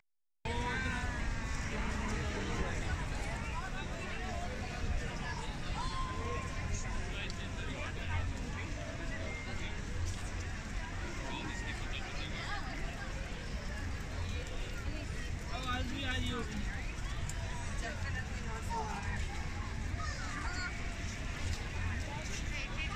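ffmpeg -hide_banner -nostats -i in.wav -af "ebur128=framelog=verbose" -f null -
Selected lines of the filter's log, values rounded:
Integrated loudness:
  I:         -39.5 LUFS
  Threshold: -49.5 LUFS
Loudness range:
  LRA:         2.5 LU
  Threshold: -59.7 LUFS
  LRA low:   -40.9 LUFS
  LRA high:  -38.4 LUFS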